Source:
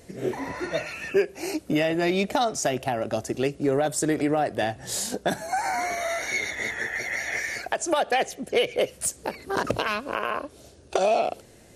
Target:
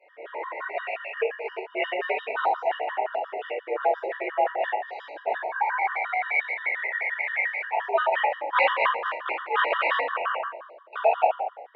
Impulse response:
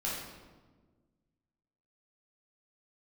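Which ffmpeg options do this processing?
-filter_complex "[0:a]asettb=1/sr,asplit=3[s0][s1][s2];[s0]atrim=end=8.374[s3];[s1]atrim=start=8.37:end=10.03,asetpts=PTS-STARTPTS,afade=t=in:d=0.004:c=qsin,afade=t=out:st=1.656:d=0.004:c=qsin,aeval=exprs='0.355*(cos(1*acos(clip(val(0)/0.355,-1,1)))-cos(1*PI/2))+0.126*(cos(7*acos(clip(val(0)/0.355,-1,1)))-cos(7*PI/2))+0.126*(cos(8*acos(clip(val(0)/0.355,-1,1)))-cos(8*PI/2))':c=same[s4];[s2]atrim=start=10.026[s5];[s3][s4]acrossfade=d=0.004:c1=hsin:c2=qsin[s6];[s6][s5]acrossfade=d=0.004:c1=qsin:c2=hsin[s7];[1:a]atrim=start_sample=2205,asetrate=70560,aresample=44100[s8];[s7][s8]afir=irnorm=-1:irlink=0,highpass=f=510:t=q:w=0.5412,highpass=f=510:t=q:w=1.307,lowpass=f=2700:t=q:w=0.5176,lowpass=f=2700:t=q:w=0.7071,lowpass=f=2700:t=q:w=1.932,afreqshift=63,afftfilt=real='re*gt(sin(2*PI*5.7*pts/sr)*(1-2*mod(floor(b*sr/1024/960),2)),0)':imag='im*gt(sin(2*PI*5.7*pts/sr)*(1-2*mod(floor(b*sr/1024/960),2)),0)':win_size=1024:overlap=0.75,volume=1.58"

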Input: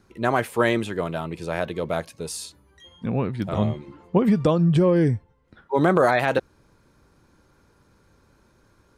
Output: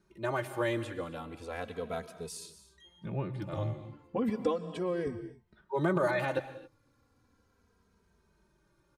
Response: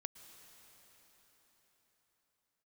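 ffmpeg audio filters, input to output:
-filter_complex "[0:a]asettb=1/sr,asplit=3[s0][s1][s2];[s0]atrim=end=4.294[s3];[s1]atrim=start=4.29:end=5.07,asetpts=PTS-STARTPTS,afade=t=in:d=0.004:c=qsin,afade=t=out:st=0.776:d=0.004:c=qsin,lowshelf=f=220:t=q:w=1.5:g=-9[s4];[s2]atrim=start=5.066[s5];[s3][s4]acrossfade=d=0.004:c1=hsin:c2=qsin[s6];[s6][s5]acrossfade=d=0.004:c1=qsin:c2=hsin[s7];[1:a]atrim=start_sample=2205,afade=t=out:st=0.33:d=0.01,atrim=end_sample=14994[s8];[s7][s8]afir=irnorm=-1:irlink=0,asplit=2[s9][s10];[s10]adelay=2.8,afreqshift=-0.35[s11];[s9][s11]amix=inputs=2:normalize=1,volume=0.668"

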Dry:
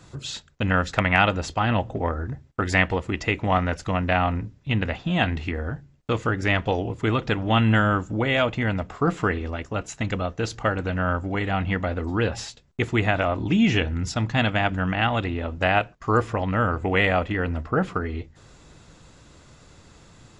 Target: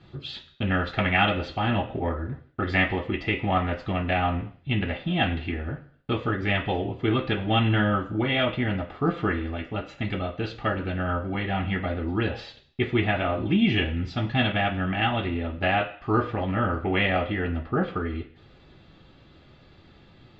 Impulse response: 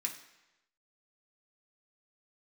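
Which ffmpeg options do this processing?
-filter_complex "[0:a]lowpass=f=3700:w=0.5412,lowpass=f=3700:w=1.3066[s0];[1:a]atrim=start_sample=2205,asetrate=79380,aresample=44100[s1];[s0][s1]afir=irnorm=-1:irlink=0,volume=1.68"

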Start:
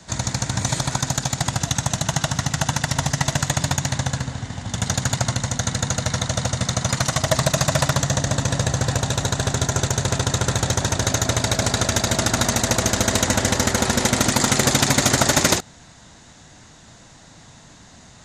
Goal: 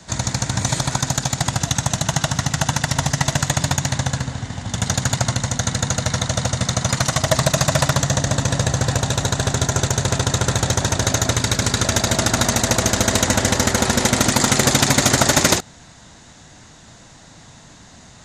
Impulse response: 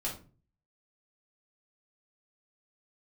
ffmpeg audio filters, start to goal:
-filter_complex "[0:a]asettb=1/sr,asplit=3[s0][s1][s2];[s0]atrim=end=11.324[s3];[s1]atrim=start=11.32:end=11.84,asetpts=PTS-STARTPTS,afade=t=in:d=0.004:c=qsin,afade=t=out:st=0.516:d=0.004:c=qsin,equalizer=f=680:w=2.9:g=-8.5[s4];[s2]atrim=start=11.836[s5];[s3][s4]acrossfade=d=0.004:c1=hsin:c2=qsin[s6];[s6][s5]acrossfade=d=0.004:c1=qsin:c2=hsin,volume=1.26"

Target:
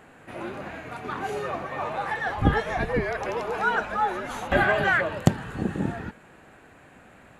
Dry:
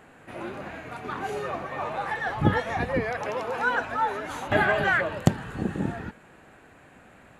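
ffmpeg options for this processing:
-filter_complex "[0:a]asettb=1/sr,asplit=3[s0][s1][s2];[s0]atrim=end=2.364[s3];[s1]atrim=start=2.36:end=4.64,asetpts=PTS-STARTPTS,afade=t=in:d=0.004:c=qsin,afade=t=out:st=2.276:d=0.004:c=qsin,afreqshift=-41[s4];[s2]atrim=start=4.636[s5];[s3][s4]acrossfade=d=0.004:c1=hsin:c2=qsin[s6];[s6][s5]acrossfade=d=0.004:c1=qsin:c2=hsin,volume=1.12"

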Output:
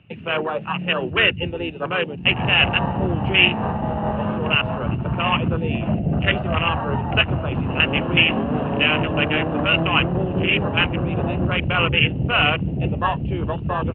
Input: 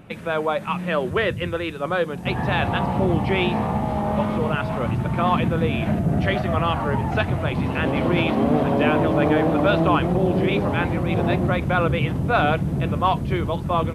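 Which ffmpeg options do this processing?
-filter_complex "[0:a]afwtdn=0.0447,acrossover=split=180|1100[s0][s1][s2];[s1]alimiter=limit=0.112:level=0:latency=1:release=63[s3];[s0][s3][s2]amix=inputs=3:normalize=0,asplit=2[s4][s5];[s5]asetrate=35002,aresample=44100,atempo=1.25992,volume=0.398[s6];[s4][s6]amix=inputs=2:normalize=0,lowpass=f=2800:t=q:w=13,tremolo=f=4.9:d=0.3,volume=1.12"

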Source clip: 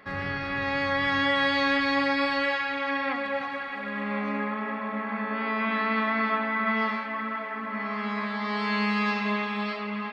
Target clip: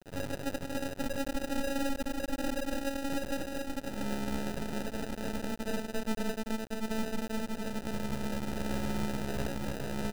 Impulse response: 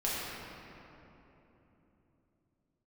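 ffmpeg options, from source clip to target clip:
-filter_complex "[0:a]asettb=1/sr,asplit=3[s0][s1][s2];[s0]atrim=end=6.504[s3];[s1]atrim=start=6.5:end=7.4,asetpts=PTS-STARTPTS,afade=t=in:d=0.004:c=qsin,afade=t=out:st=0.896:d=0.004:c=qsin,highpass=f=130:w=0.5412,highpass=f=130:w=1.3066,equalizer=f=250:t=q:w=4:g=-7,equalizer=f=840:t=q:w=4:g=4,equalizer=f=2500:t=q:w=4:g=-4,lowpass=f=4600:w=0.5412,lowpass=f=4600:w=1.3066[s4];[s2]atrim=start=7.396[s5];[s3][s4]acrossfade=d=0.004:c1=hsin:c2=qsin[s6];[s6][s5]acrossfade=d=0.004:c1=qsin:c2=hsin,aecho=1:1:130|279.5|451.4|649.1|876.5:0.631|0.398|0.251|0.158|0.1,acrusher=bits=7:mix=0:aa=0.000001,alimiter=limit=0.106:level=0:latency=1:release=52,acrusher=samples=40:mix=1:aa=0.000001,aeval=exprs='max(val(0),0)':c=same,volume=0.75"

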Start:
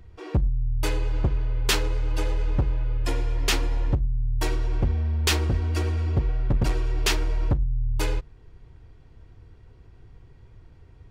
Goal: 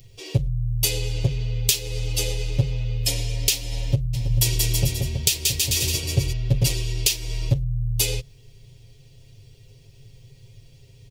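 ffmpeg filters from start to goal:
-filter_complex "[0:a]equalizer=f=280:w=0.64:g=-7,aecho=1:1:7.4:0.97,asplit=3[s0][s1][s2];[s0]afade=t=out:st=4.13:d=0.02[s3];[s1]aecho=1:1:180|324|439.2|531.4|605.1:0.631|0.398|0.251|0.158|0.1,afade=t=in:st=4.13:d=0.02,afade=t=out:st=6.32:d=0.02[s4];[s2]afade=t=in:st=6.32:d=0.02[s5];[s3][s4][s5]amix=inputs=3:normalize=0,aexciter=amount=14.1:drive=4.8:freq=2200,acompressor=threshold=0.447:ratio=10,equalizer=f=125:t=o:w=1:g=11,equalizer=f=500:t=o:w=1:g=12,equalizer=f=1000:t=o:w=1:g=-7,equalizer=f=2000:t=o:w=1:g=-7,equalizer=f=4000:t=o:w=1:g=-5,equalizer=f=8000:t=o:w=1:g=-4,volume=0.531"

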